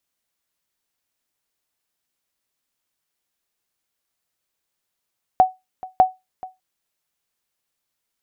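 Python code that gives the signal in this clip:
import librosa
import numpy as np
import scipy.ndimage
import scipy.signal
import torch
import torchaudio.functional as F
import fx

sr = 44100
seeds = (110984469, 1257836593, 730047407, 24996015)

y = fx.sonar_ping(sr, hz=747.0, decay_s=0.2, every_s=0.6, pings=2, echo_s=0.43, echo_db=-20.5, level_db=-4.5)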